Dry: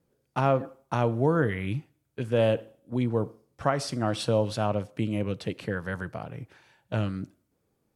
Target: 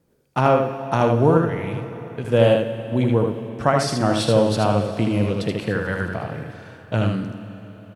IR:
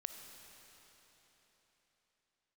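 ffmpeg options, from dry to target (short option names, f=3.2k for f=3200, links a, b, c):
-filter_complex "[0:a]asettb=1/sr,asplit=3[a][b][c];[a]atrim=end=1.374[d];[b]atrim=start=1.37:end=2.25,asetpts=PTS-STARTPTS,afade=t=in:d=0.004:c=qsin,afade=t=out:st=0.876:d=0.004:c=qsin,acompressor=threshold=-35dB:ratio=3[e];[c]atrim=start=2.246[f];[d][e]acrossfade=d=0.004:c1=hsin:c2=qsin[g];[g][f]acrossfade=d=0.004:c1=qsin:c2=hsin,aecho=1:1:78:0.631,asplit=2[h][i];[1:a]atrim=start_sample=2205,asetrate=48510,aresample=44100[j];[i][j]afir=irnorm=-1:irlink=0,volume=7.5dB[k];[h][k]amix=inputs=2:normalize=0,volume=-1dB"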